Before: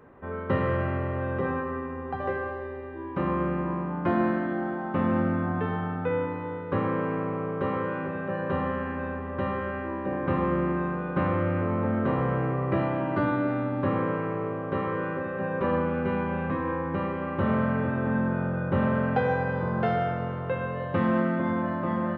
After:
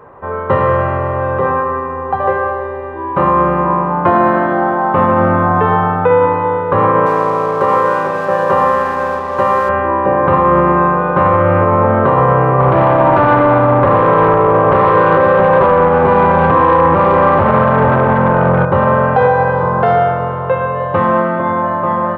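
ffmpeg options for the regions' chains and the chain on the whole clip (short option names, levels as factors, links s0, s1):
-filter_complex "[0:a]asettb=1/sr,asplit=3[s0][s1][s2];[s0]atrim=end=7.064[s3];[s1]atrim=start=7.06:end=9.69,asetpts=PTS-STARTPTS,afade=t=in:d=0.004:c=qsin,afade=t=out:st=2.626:d=0.004:c=qsin,highpass=f=230:p=1,aeval=exprs='sgn(val(0))*max(abs(val(0))-0.00422,0)':c=same[s4];[s2]atrim=start=9.686[s5];[s3][s4]acrossfade=d=0.004:c1=hsin:c2=qsin[s6];[s6][s5]acrossfade=d=0.004:c1=qsin:c2=hsin,asettb=1/sr,asplit=3[s7][s8][s9];[s7]atrim=end=12.604[s10];[s8]atrim=start=12.6:end=18.65,asetpts=PTS-STARTPTS,afade=t=in:d=0.004:c=qsin,afade=t=out:st=6.046:d=0.004:c=qsin,highshelf=f=3500:g=-10.5,acompressor=threshold=0.0447:ratio=5:attack=3.2:release=140:knee=1:detection=peak,aeval=exprs='0.1*sin(PI/2*2*val(0)/0.1)':c=same[s11];[s9]atrim=start=18.646[s12];[s10][s11]acrossfade=d=0.004:c1=hsin:c2=qsin[s13];[s13][s12]acrossfade=d=0.004:c1=qsin:c2=hsin,equalizer=f=125:t=o:w=1:g=4,equalizer=f=250:t=o:w=1:g=-6,equalizer=f=500:t=o:w=1:g=6,equalizer=f=1000:t=o:w=1:g=11,dynaudnorm=f=390:g=17:m=1.88,alimiter=level_in=2.66:limit=0.891:release=50:level=0:latency=1,volume=0.891"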